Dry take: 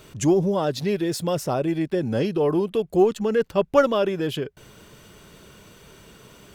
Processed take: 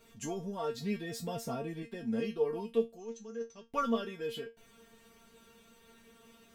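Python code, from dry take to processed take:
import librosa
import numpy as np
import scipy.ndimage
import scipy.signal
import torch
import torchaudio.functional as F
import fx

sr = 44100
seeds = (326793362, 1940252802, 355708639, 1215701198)

y = fx.peak_eq(x, sr, hz=110.0, db=8.5, octaves=2.6, at=(0.74, 1.83))
y = fx.ladder_lowpass(y, sr, hz=6200.0, resonance_pct=90, at=(2.92, 3.68), fade=0.02)
y = fx.comb_fb(y, sr, f0_hz=230.0, decay_s=0.2, harmonics='all', damping=0.0, mix_pct=100)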